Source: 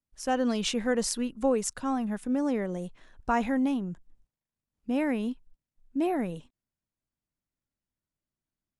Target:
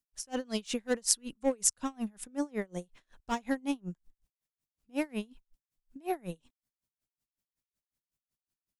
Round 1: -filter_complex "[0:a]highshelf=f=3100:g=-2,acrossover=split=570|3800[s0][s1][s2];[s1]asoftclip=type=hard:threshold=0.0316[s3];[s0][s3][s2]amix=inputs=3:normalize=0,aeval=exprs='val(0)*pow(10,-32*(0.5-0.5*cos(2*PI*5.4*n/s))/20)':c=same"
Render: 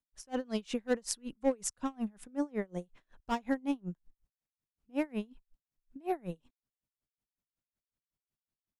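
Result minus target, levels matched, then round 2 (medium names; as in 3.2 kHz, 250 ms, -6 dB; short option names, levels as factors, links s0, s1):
8 kHz band -7.0 dB
-filter_complex "[0:a]highshelf=f=3100:g=9.5,acrossover=split=570|3800[s0][s1][s2];[s1]asoftclip=type=hard:threshold=0.0316[s3];[s0][s3][s2]amix=inputs=3:normalize=0,aeval=exprs='val(0)*pow(10,-32*(0.5-0.5*cos(2*PI*5.4*n/s))/20)':c=same"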